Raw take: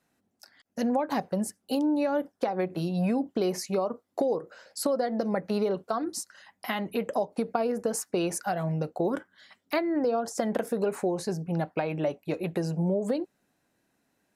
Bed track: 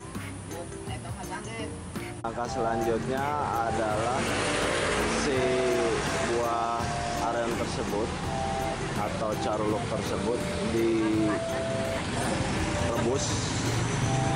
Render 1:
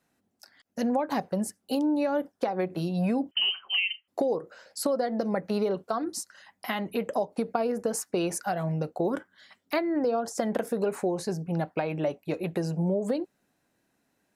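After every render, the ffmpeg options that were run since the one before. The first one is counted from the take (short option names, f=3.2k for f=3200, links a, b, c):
-filter_complex "[0:a]asettb=1/sr,asplit=3[a][b][c];[a]atrim=end=3.314[d];[b]atrim=start=3.31:end=4.08,asetpts=PTS-STARTPTS,afade=t=in:d=0.004:c=qsin,afade=t=out:st=0.766:d=0.004:c=qsin,lowpass=f=2.8k:t=q:w=0.5098,lowpass=f=2.8k:t=q:w=0.6013,lowpass=f=2.8k:t=q:w=0.9,lowpass=f=2.8k:t=q:w=2.563,afreqshift=-3300[e];[c]atrim=start=4.076[f];[d][e]acrossfade=d=0.004:c1=hsin:c2=qsin[g];[g][f]acrossfade=d=0.004:c1=qsin:c2=hsin"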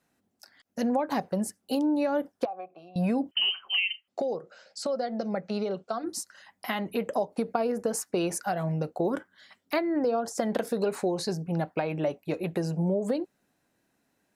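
-filter_complex "[0:a]asettb=1/sr,asplit=3[a][b][c];[a]atrim=end=2.454[d];[b]atrim=start=2.45:end=2.96,asetpts=PTS-STARTPTS,afade=t=in:d=0.004:c=qsin,afade=t=out:st=0.506:d=0.004:c=qsin,asplit=3[e][f][g];[e]bandpass=f=730:t=q:w=8,volume=0dB[h];[f]bandpass=f=1.09k:t=q:w=8,volume=-6dB[i];[g]bandpass=f=2.44k:t=q:w=8,volume=-9dB[j];[h][i][j]amix=inputs=3:normalize=0[k];[c]atrim=start=2.956[l];[d][k]acrossfade=d=0.004:c1=hsin:c2=qsin[m];[m][l]acrossfade=d=0.004:c1=qsin:c2=hsin,asplit=3[n][o][p];[n]afade=t=out:st=4.08:d=0.02[q];[o]highpass=150,equalizer=f=300:t=q:w=4:g=-10,equalizer=f=460:t=q:w=4:g=-4,equalizer=f=1k:t=q:w=4:g=-8,equalizer=f=1.8k:t=q:w=4:g=-5,lowpass=f=7.6k:w=0.5412,lowpass=f=7.6k:w=1.3066,afade=t=in:st=4.08:d=0.02,afade=t=out:st=6.03:d=0.02[r];[p]afade=t=in:st=6.03:d=0.02[s];[q][r][s]amix=inputs=3:normalize=0,asettb=1/sr,asplit=3[t][u][v];[t]atrim=end=10.494[w];[u]atrim=start=10.49:end=11.35,asetpts=PTS-STARTPTS,afade=t=in:d=0.004:c=qsin,afade=t=out:st=0.856:d=0.004:c=qsin,equalizer=f=4.2k:t=o:w=0.79:g=8.5[x];[v]atrim=start=11.346[y];[w][x]acrossfade=d=0.004:c1=hsin:c2=qsin[z];[z][y]acrossfade=d=0.004:c1=qsin:c2=hsin"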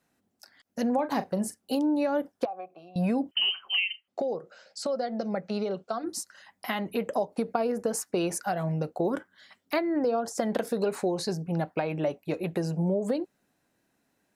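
-filter_complex "[0:a]asettb=1/sr,asplit=3[a][b][c];[a]atrim=end=0.944[d];[b]atrim=start=0.94:end=1.59,asetpts=PTS-STARTPTS,afade=t=in:d=0.004:c=qsin,afade=t=out:st=0.646:d=0.004:c=qsin,asplit=2[e][f];[f]adelay=40,volume=-12.5dB[g];[e][g]amix=inputs=2:normalize=0,atrim=end_sample=28665[h];[c]atrim=start=1.586[i];[d][h]acrossfade=d=0.004:c1=hsin:c2=qsin[j];[j][i]acrossfade=d=0.004:c1=qsin:c2=hsin,asettb=1/sr,asplit=3[k][l][m];[k]atrim=end=3.844[n];[l]atrim=start=3.84:end=4.39,asetpts=PTS-STARTPTS,afade=t=in:d=0.004:c=qsin,afade=t=out:st=0.546:d=0.004:c=qsin,highshelf=f=3.8k:g=-6[o];[m]atrim=start=4.386[p];[n][o]acrossfade=d=0.004:c1=hsin:c2=qsin[q];[q][p]acrossfade=d=0.004:c1=qsin:c2=hsin"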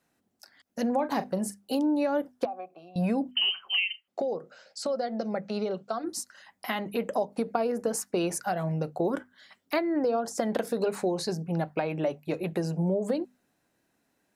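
-af "bandreject=f=50:t=h:w=6,bandreject=f=100:t=h:w=6,bandreject=f=150:t=h:w=6,bandreject=f=200:t=h:w=6,bandreject=f=250:t=h:w=6"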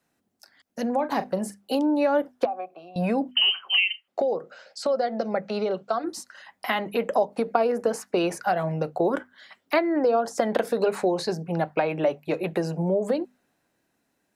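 -filter_complex "[0:a]acrossover=split=360|3900[a][b][c];[b]dynaudnorm=f=180:g=13:m=6.5dB[d];[c]alimiter=level_in=6dB:limit=-24dB:level=0:latency=1:release=135,volume=-6dB[e];[a][d][e]amix=inputs=3:normalize=0"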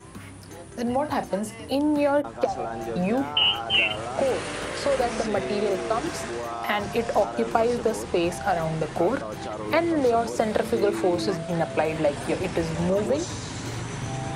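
-filter_complex "[1:a]volume=-4.5dB[a];[0:a][a]amix=inputs=2:normalize=0"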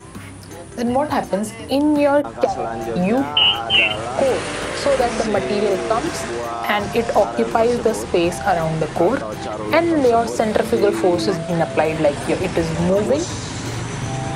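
-af "volume=6.5dB,alimiter=limit=-3dB:level=0:latency=1"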